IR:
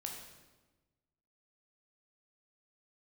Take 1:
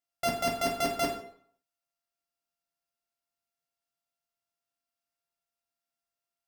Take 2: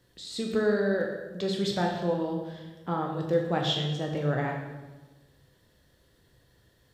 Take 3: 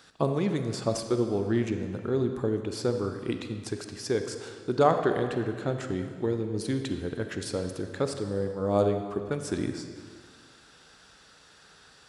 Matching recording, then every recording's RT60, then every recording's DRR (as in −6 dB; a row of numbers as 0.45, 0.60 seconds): 2; 0.60, 1.2, 1.9 seconds; −1.5, 0.5, 6.0 decibels